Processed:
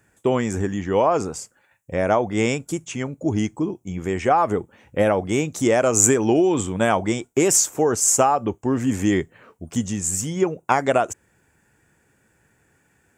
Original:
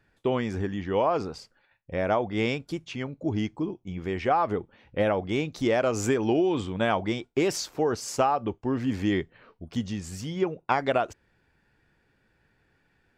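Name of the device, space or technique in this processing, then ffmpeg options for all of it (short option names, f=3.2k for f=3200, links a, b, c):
budget condenser microphone: -af "highpass=65,highshelf=f=5.7k:t=q:w=3:g=9.5,volume=6dB"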